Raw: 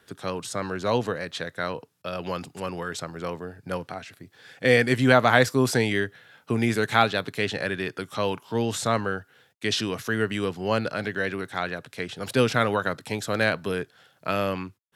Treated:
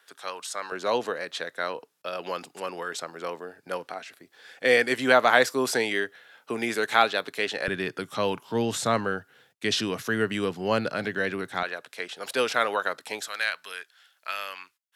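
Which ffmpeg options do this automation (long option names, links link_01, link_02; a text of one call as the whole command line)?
ffmpeg -i in.wav -af "asetnsamples=nb_out_samples=441:pad=0,asendcmd='0.72 highpass f 370;7.68 highpass f 130;11.63 highpass f 500;13.28 highpass f 1500',highpass=770" out.wav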